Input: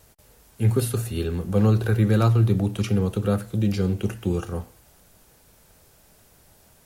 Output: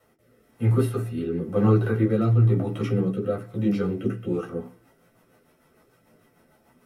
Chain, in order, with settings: rotary cabinet horn 1 Hz, later 6.7 Hz, at 4.07 s; chorus voices 4, 0.51 Hz, delay 14 ms, depth 4.1 ms; reverberation RT60 0.15 s, pre-delay 3 ms, DRR 1 dB; trim -7.5 dB

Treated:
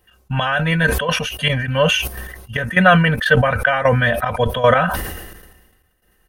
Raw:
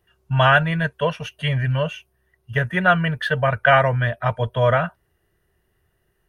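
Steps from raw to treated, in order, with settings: treble shelf 5.4 kHz +5.5 dB; comb 3.9 ms, depth 59%; trance gate "x..x..xxxx." 152 bpm -12 dB; loudness maximiser +7 dB; decay stretcher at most 44 dB/s; trim -1 dB

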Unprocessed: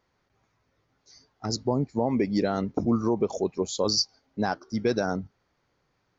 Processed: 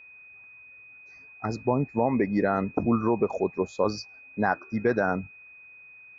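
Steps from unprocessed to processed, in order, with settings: FFT filter 350 Hz 0 dB, 1.9 kHz +7 dB, 3 kHz -15 dB; whistle 2.5 kHz -47 dBFS

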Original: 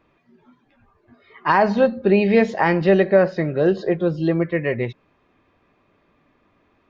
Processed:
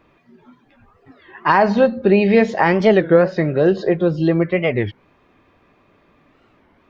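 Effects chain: in parallel at 0 dB: compression, threshold -23 dBFS, peak gain reduction 12.5 dB; on the sum: warped record 33 1/3 rpm, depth 250 cents

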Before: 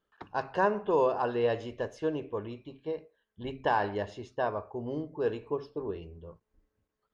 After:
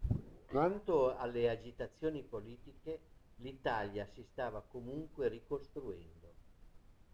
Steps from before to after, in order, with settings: tape start-up on the opening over 0.77 s; peaking EQ 940 Hz -5.5 dB 1.1 oct; added noise brown -46 dBFS; upward expansion 1.5:1, over -47 dBFS; trim -4 dB

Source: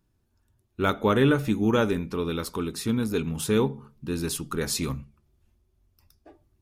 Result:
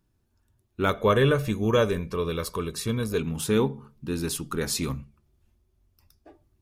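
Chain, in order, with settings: 0.89–3.20 s: comb 1.8 ms, depth 58%

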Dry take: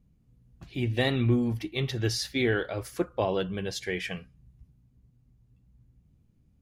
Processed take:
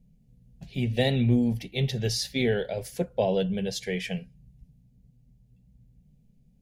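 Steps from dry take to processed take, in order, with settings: bass shelf 330 Hz +5.5 dB; static phaser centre 320 Hz, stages 6; trim +2.5 dB

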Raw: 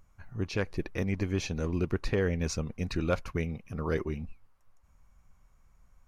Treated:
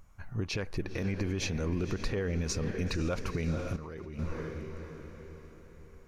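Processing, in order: echo that smears into a reverb 504 ms, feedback 48%, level -12 dB; 3.76–4.19 s: level held to a coarse grid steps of 23 dB; peak limiter -26.5 dBFS, peak gain reduction 10.5 dB; trim +4 dB

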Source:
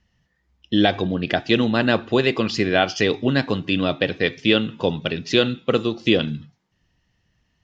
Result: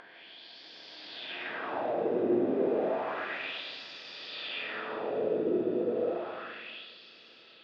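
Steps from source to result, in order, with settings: spectral blur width 1160 ms; tone controls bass -11 dB, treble -14 dB; in parallel at -2.5 dB: peak limiter -23 dBFS, peak gain reduction 10.5 dB; on the sum: harmony voices -12 st -6 dB, +5 st -6 dB, +7 st -17 dB; algorithmic reverb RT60 3.3 s, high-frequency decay 0.65×, pre-delay 105 ms, DRR -6.5 dB; LFO band-pass sine 0.31 Hz 350–5500 Hz; upward compressor, threshold -36 dBFS; trim -9 dB

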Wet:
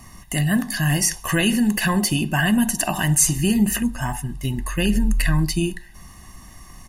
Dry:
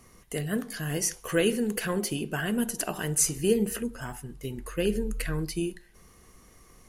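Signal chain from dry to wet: in parallel at +1 dB: peak limiter -21.5 dBFS, peak gain reduction 10 dB; on the sum: comb 1.1 ms, depth 93%; trim +2 dB

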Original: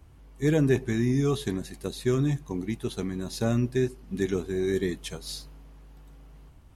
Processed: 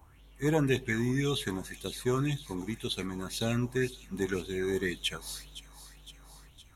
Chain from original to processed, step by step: treble shelf 8.1 kHz +10 dB; band-stop 4.8 kHz, Q 7.1; on a send: feedback echo behind a high-pass 513 ms, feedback 61%, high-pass 3.7 kHz, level -11 dB; on the sum: sweeping bell 1.9 Hz 870–3600 Hz +16 dB; trim -5.5 dB

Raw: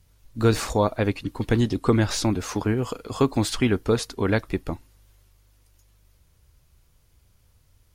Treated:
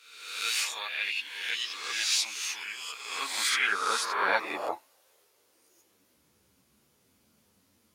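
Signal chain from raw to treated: reverse spectral sustain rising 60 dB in 0.99 s; high-pass sweep 2.6 kHz -> 230 Hz, 2.73–6.33 s; three-phase chorus

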